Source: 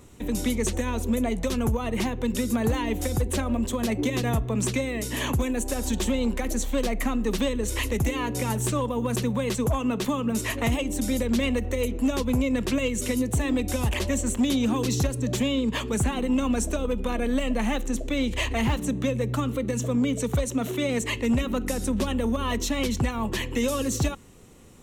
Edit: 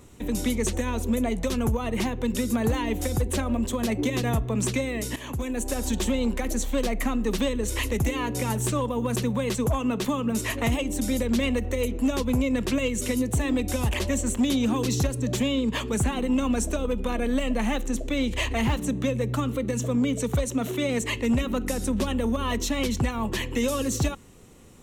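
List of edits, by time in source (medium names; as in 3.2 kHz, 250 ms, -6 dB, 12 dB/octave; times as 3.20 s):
5.16–5.68 s: fade in, from -14.5 dB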